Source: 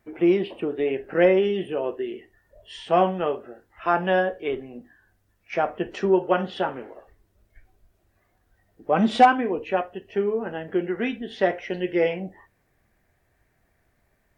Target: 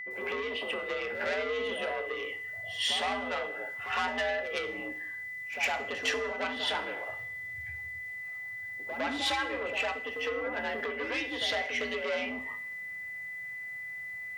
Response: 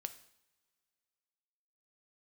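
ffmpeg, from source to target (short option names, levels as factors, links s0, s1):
-filter_complex "[0:a]acompressor=threshold=0.0282:ratio=4,aeval=exprs='(tanh(39.8*val(0)+0.05)-tanh(0.05))/39.8':c=same,afreqshift=64,asplit=2[s0][s1];[s1]tiltshelf=f=970:g=-7.5[s2];[1:a]atrim=start_sample=2205,adelay=107[s3];[s2][s3]afir=irnorm=-1:irlink=0,volume=3.98[s4];[s0][s4]amix=inputs=2:normalize=0,aeval=exprs='val(0)+0.02*sin(2*PI*2000*n/s)':c=same,equalizer=f=360:t=o:w=0.23:g=-8.5,volume=0.668"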